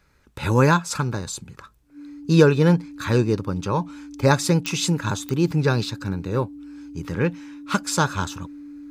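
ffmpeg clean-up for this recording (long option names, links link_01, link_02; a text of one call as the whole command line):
ffmpeg -i in.wav -af "adeclick=threshold=4,bandreject=frequency=290:width=30" out.wav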